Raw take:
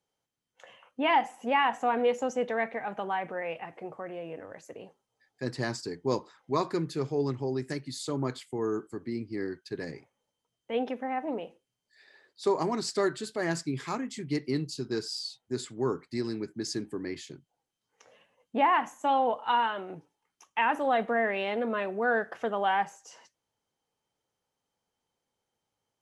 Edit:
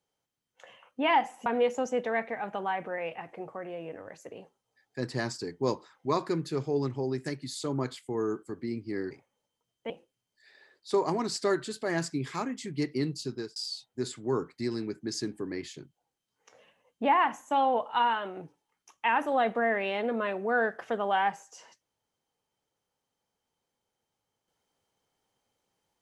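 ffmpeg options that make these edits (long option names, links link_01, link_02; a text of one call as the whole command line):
ffmpeg -i in.wav -filter_complex "[0:a]asplit=5[link_01][link_02][link_03][link_04][link_05];[link_01]atrim=end=1.462[link_06];[link_02]atrim=start=1.898:end=9.552[link_07];[link_03]atrim=start=9.948:end=10.742[link_08];[link_04]atrim=start=11.428:end=15.09,asetpts=PTS-STARTPTS,afade=type=out:start_time=3.402:duration=0.26[link_09];[link_05]atrim=start=15.09,asetpts=PTS-STARTPTS,afade=type=in:duration=0.004:curve=hsin[link_10];[link_06][link_07]acrossfade=duration=0.004:curve1=hsin:curve2=hsin[link_11];[link_11][link_08]acrossfade=duration=0.004:curve1=hsin:curve2=hsin[link_12];[link_09][link_10]concat=n=2:v=0:a=1[link_13];[link_12][link_13]acrossfade=duration=0.004:curve1=hsin:curve2=hsin" out.wav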